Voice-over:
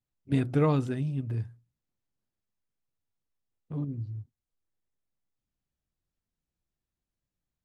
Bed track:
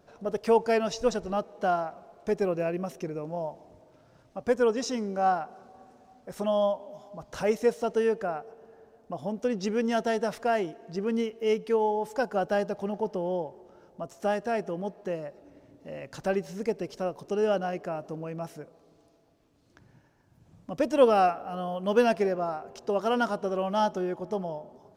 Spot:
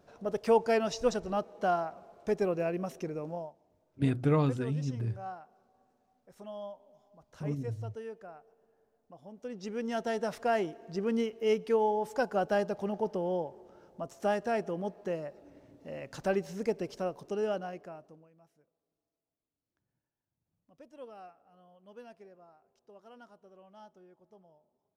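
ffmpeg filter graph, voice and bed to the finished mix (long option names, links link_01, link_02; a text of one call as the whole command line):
ffmpeg -i stem1.wav -i stem2.wav -filter_complex "[0:a]adelay=3700,volume=-2dB[link_01];[1:a]volume=12.5dB,afade=type=out:start_time=3.3:duration=0.23:silence=0.188365,afade=type=in:start_time=9.31:duration=1.3:silence=0.177828,afade=type=out:start_time=16.88:duration=1.41:silence=0.0530884[link_02];[link_01][link_02]amix=inputs=2:normalize=0" out.wav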